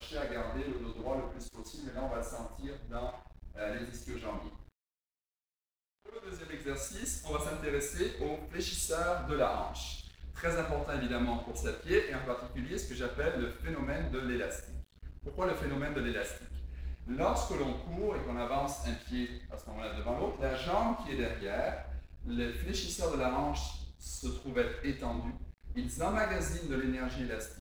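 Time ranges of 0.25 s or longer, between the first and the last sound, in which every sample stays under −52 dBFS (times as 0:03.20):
0:04.68–0:06.05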